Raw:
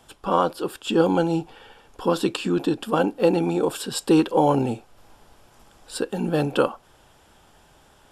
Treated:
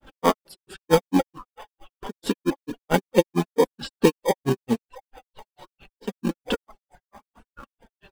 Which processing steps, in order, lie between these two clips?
low-pass opened by the level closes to 2100 Hz, open at -19.5 dBFS; on a send: delay with a stepping band-pass 0.528 s, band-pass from 950 Hz, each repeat 0.7 oct, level -12 dB; on the sum: grains 0.118 s, grains 4.5/s, spray 0.1 s; in parallel at -4.5 dB: sample-and-hold 32×; on the sum: reverb removal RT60 0.99 s; flange 0.79 Hz, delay 3.5 ms, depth 2.1 ms, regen +12%; gain +5.5 dB

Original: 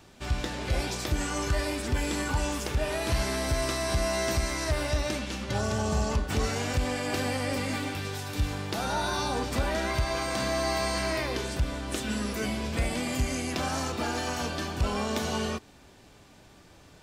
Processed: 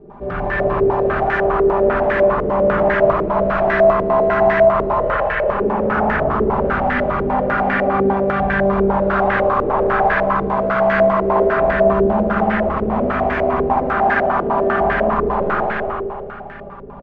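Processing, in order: 5.01–5.48 sine-wave speech; comb 5 ms, depth 85%; in parallel at -3 dB: sine folder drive 15 dB, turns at -13.5 dBFS; on the sum: air absorption 73 m; on a send: echo 0.338 s -3 dB; on the sum: spring tank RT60 2.2 s, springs 56 ms, chirp 75 ms, DRR -4 dB; stepped low-pass 10 Hz 430–1700 Hz; gain -9.5 dB

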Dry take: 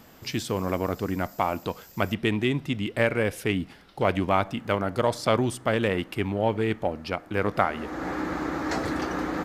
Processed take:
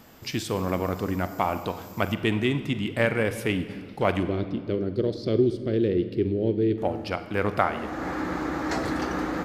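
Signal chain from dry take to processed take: 4.23–6.78 EQ curve 260 Hz 0 dB, 370 Hz +9 dB, 890 Hz -26 dB, 1700 Hz -15 dB, 2700 Hz -14 dB, 4300 Hz -2 dB, 7600 Hz -23 dB; reverb RT60 2.1 s, pre-delay 44 ms, DRR 10 dB

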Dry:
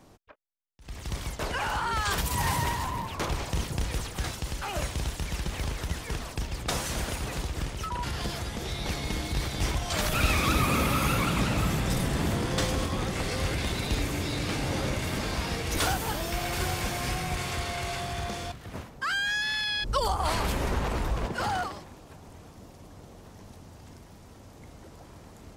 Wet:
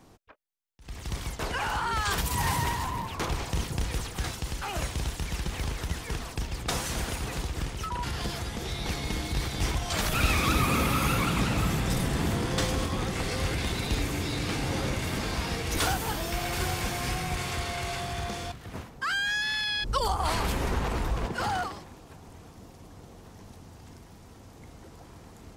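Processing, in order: notch 590 Hz, Q 12

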